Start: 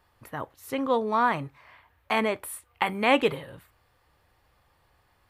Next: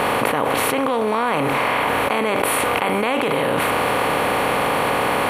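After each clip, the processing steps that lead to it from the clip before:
compressor on every frequency bin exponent 0.4
envelope flattener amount 100%
level −4.5 dB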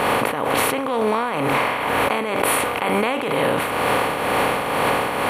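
shaped tremolo triangle 2.1 Hz, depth 55%
level +1.5 dB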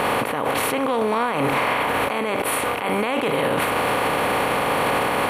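automatic gain control
brickwall limiter −12.5 dBFS, peak gain reduction 11.5 dB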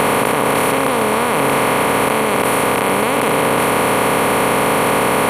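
compressor on every frequency bin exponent 0.2
level −1 dB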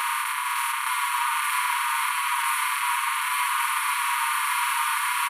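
linear-phase brick-wall high-pass 910 Hz
single-tap delay 865 ms −3.5 dB
barber-pole flanger 6.8 ms −1.7 Hz
level −4.5 dB

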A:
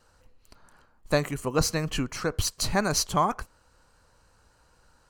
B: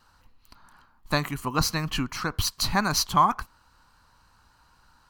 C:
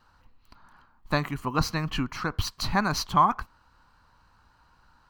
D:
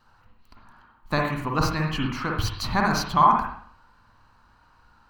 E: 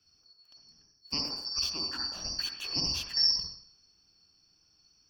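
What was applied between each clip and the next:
graphic EQ with 10 bands 250 Hz +3 dB, 500 Hz −11 dB, 1,000 Hz +8 dB, 4,000 Hz +5 dB, 8,000 Hz −7 dB, 16,000 Hz +7 dB
parametric band 11,000 Hz −11.5 dB 1.9 octaves
convolution reverb RT60 0.60 s, pre-delay 45 ms, DRR −0.5 dB
band-splitting scrambler in four parts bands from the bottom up 2341; level −9 dB

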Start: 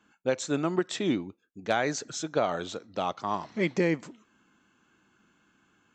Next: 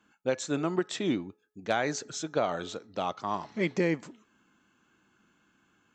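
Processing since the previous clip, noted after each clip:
hum removal 424.5 Hz, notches 4
level −1.5 dB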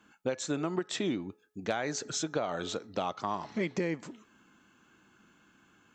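downward compressor 4 to 1, threshold −34 dBFS, peak gain reduction 10 dB
level +4.5 dB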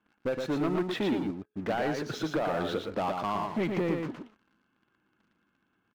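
high-frequency loss of the air 310 metres
leveller curve on the samples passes 3
single-tap delay 116 ms −4.5 dB
level −4.5 dB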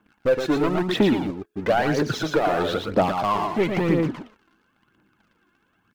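phase shifter 1 Hz, delay 3 ms, feedback 50%
level +7.5 dB

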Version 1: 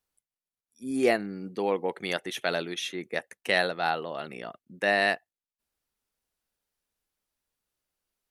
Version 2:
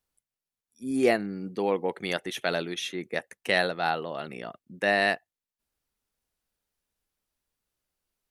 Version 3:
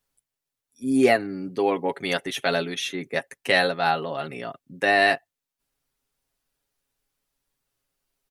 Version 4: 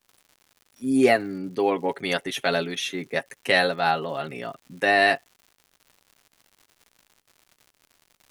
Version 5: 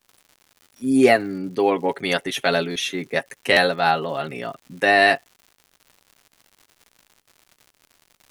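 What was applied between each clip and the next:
low-shelf EQ 220 Hz +4.5 dB
comb filter 7.3 ms, depth 65%; level +3 dB
surface crackle 170 per second −42 dBFS
buffer that repeats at 0:00.62/0:02.71/0:03.52, samples 512, times 3; level +3.5 dB

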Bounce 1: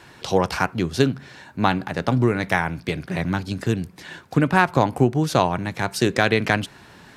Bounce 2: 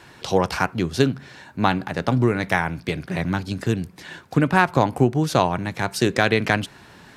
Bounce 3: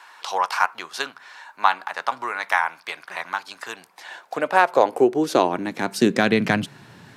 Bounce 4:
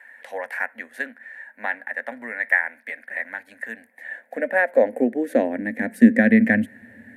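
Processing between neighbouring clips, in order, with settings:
no processing that can be heard
high-pass filter sweep 1,000 Hz → 110 Hz, 0:03.67–0:07.11; level −1.5 dB
drawn EQ curve 100 Hz 0 dB, 160 Hz −22 dB, 230 Hz +14 dB, 370 Hz −11 dB, 530 Hz +6 dB, 1,200 Hz −24 dB, 1,800 Hz +11 dB, 2,800 Hz −14 dB, 5,200 Hz −25 dB, 10,000 Hz −5 dB; level −1.5 dB

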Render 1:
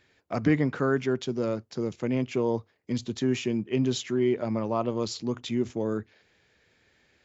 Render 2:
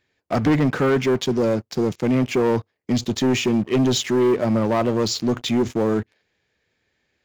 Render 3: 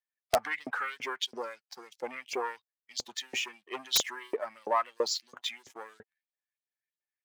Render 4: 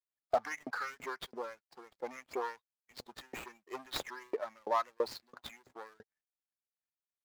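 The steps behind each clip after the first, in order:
notch filter 1,400 Hz, Q 20; leveller curve on the samples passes 3
spectral dynamics exaggerated over time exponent 1.5; auto-filter high-pass saw up 3 Hz 510–5,100 Hz; wrap-around overflow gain 9.5 dB; level −5.5 dB
running median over 15 samples; level −3 dB

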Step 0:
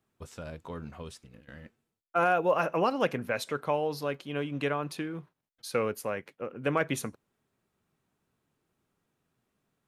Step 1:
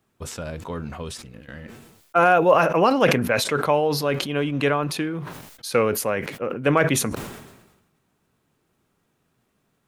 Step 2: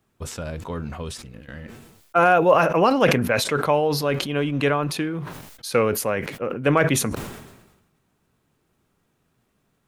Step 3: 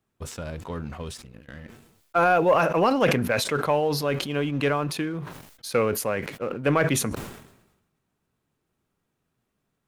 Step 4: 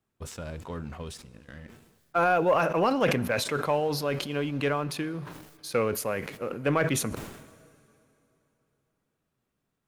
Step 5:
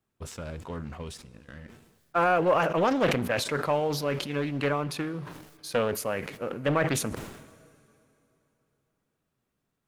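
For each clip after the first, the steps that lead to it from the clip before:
level that may fall only so fast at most 53 dB per second; level +8.5 dB
low-shelf EQ 76 Hz +6.5 dB
leveller curve on the samples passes 1; level −6.5 dB
dense smooth reverb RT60 3.2 s, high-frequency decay 0.85×, DRR 20 dB; level −3.5 dB
highs frequency-modulated by the lows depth 0.51 ms

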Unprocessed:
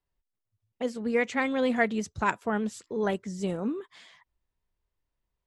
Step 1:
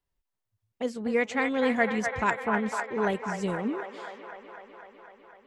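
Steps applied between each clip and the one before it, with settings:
delay with a band-pass on its return 251 ms, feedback 75%, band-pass 1,200 Hz, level −4.5 dB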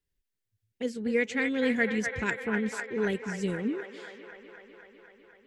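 flat-topped bell 870 Hz −12.5 dB 1.3 octaves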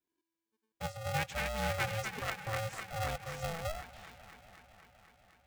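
ring modulator with a square carrier 330 Hz
level −7.5 dB

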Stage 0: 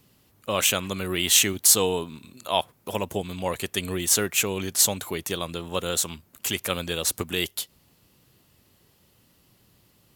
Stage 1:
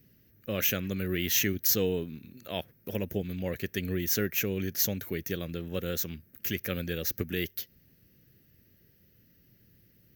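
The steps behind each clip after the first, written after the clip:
drawn EQ curve 200 Hz 0 dB, 520 Hz −5 dB, 1,000 Hz −22 dB, 1,700 Hz −1 dB, 3,500 Hz −13 dB, 6,100 Hz −6 dB, 8,700 Hz −30 dB, 15,000 Hz +6 dB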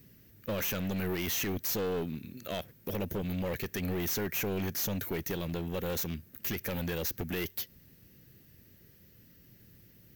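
brickwall limiter −21.5 dBFS, peak gain reduction 9 dB
hard clipping −33.5 dBFS, distortion −7 dB
bit-depth reduction 12 bits, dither none
level +4 dB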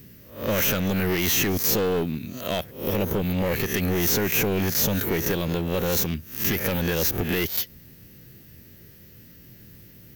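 peak hold with a rise ahead of every peak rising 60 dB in 0.43 s
level +8.5 dB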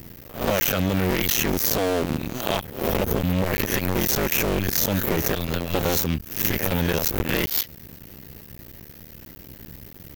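sub-harmonics by changed cycles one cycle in 2, muted
downward compressor, threshold −27 dBFS, peak gain reduction 7 dB
level +8.5 dB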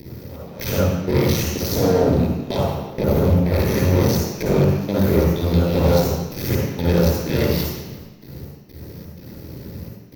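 gate pattern "xxx..xx..xxx.xxx" 126 BPM −24 dB
tube saturation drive 22 dB, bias 0.55
convolution reverb RT60 1.0 s, pre-delay 49 ms, DRR −5.5 dB
level −4.5 dB

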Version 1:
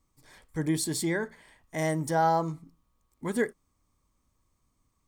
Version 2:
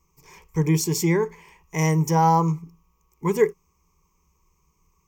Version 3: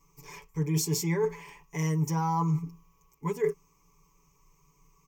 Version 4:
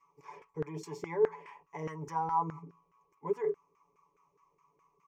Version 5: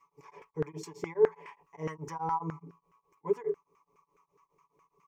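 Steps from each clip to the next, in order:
EQ curve with evenly spaced ripples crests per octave 0.77, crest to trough 17 dB; level +4 dB
comb filter 7 ms, depth 88%; reversed playback; downward compressor 20 to 1, threshold −24 dBFS, peak gain reduction 17.5 dB; reversed playback
in parallel at −1 dB: brickwall limiter −25.5 dBFS, peak gain reduction 9 dB; on the sum: auto-filter band-pass saw down 4.8 Hz 400–1,600 Hz
tremolo along a rectified sine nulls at 4.8 Hz; level +4 dB

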